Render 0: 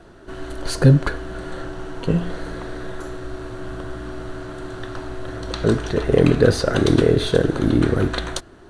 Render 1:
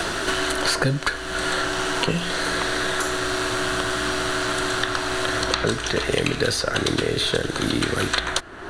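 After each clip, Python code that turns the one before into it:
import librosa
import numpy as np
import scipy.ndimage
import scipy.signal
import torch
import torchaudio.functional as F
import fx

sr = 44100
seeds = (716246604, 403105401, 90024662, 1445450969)

y = fx.tilt_shelf(x, sr, db=-8.5, hz=910.0)
y = fx.band_squash(y, sr, depth_pct=100)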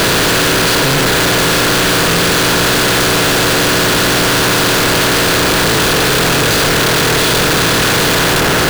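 y = fx.bin_compress(x, sr, power=0.2)
y = fx.leveller(y, sr, passes=2)
y = fx.schmitt(y, sr, flips_db=-16.0)
y = y * librosa.db_to_amplitude(-4.5)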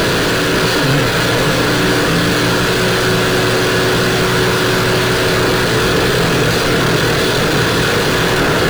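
y = x + 10.0 ** (-5.5 / 20.0) * np.pad(x, (int(540 * sr / 1000.0), 0))[:len(x)]
y = fx.rider(y, sr, range_db=10, speed_s=0.5)
y = fx.spectral_expand(y, sr, expansion=1.5)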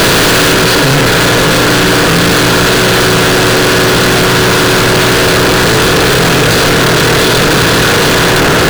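y = fx.leveller(x, sr, passes=5)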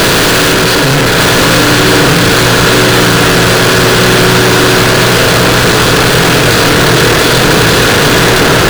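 y = x + 10.0 ** (-5.0 / 20.0) * np.pad(x, (int(1183 * sr / 1000.0), 0))[:len(x)]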